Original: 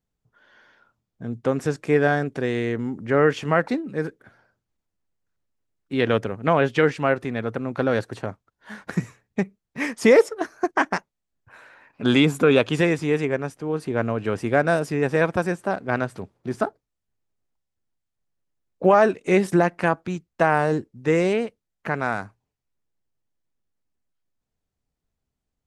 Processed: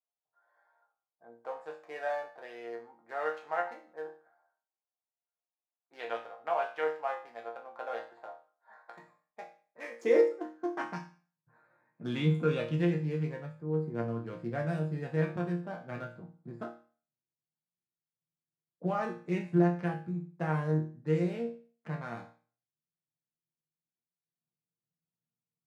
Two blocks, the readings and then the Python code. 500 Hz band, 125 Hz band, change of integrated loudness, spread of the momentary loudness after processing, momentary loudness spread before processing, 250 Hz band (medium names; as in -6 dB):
-12.5 dB, -6.5 dB, -11.0 dB, 17 LU, 12 LU, -11.0 dB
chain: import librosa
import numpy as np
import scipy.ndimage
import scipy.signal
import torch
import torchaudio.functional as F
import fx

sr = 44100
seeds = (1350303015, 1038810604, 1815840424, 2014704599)

y = fx.wiener(x, sr, points=15)
y = fx.filter_sweep_highpass(y, sr, from_hz=740.0, to_hz=150.0, start_s=9.5, end_s=10.81, q=3.3)
y = fx.resonator_bank(y, sr, root=46, chord='sus4', decay_s=0.41)